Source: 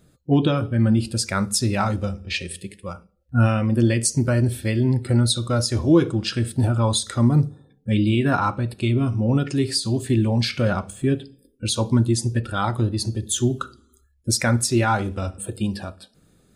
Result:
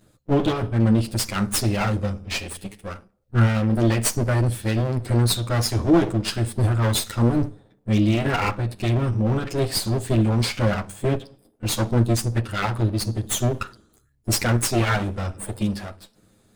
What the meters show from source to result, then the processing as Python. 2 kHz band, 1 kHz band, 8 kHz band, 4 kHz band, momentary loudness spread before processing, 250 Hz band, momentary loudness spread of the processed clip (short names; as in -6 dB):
+0.5 dB, -1.5 dB, -1.5 dB, -1.0 dB, 9 LU, -1.5 dB, 10 LU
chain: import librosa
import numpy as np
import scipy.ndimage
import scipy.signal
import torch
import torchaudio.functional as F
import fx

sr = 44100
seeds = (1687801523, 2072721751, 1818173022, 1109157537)

y = fx.lower_of_two(x, sr, delay_ms=9.5)
y = F.gain(torch.from_numpy(y), 1.0).numpy()